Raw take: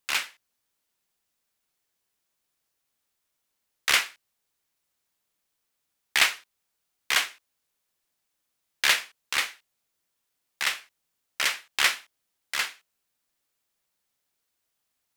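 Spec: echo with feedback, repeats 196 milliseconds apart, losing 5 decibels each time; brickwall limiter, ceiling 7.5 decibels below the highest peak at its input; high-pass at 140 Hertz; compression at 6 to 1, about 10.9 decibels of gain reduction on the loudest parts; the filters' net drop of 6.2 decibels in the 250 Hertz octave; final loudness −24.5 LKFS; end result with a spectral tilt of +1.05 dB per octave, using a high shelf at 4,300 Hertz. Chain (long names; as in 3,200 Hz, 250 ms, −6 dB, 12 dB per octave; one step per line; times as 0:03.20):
high-pass filter 140 Hz
parametric band 250 Hz −8.5 dB
high-shelf EQ 4,300 Hz −3 dB
downward compressor 6 to 1, threshold −29 dBFS
brickwall limiter −19.5 dBFS
repeating echo 196 ms, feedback 56%, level −5 dB
level +13 dB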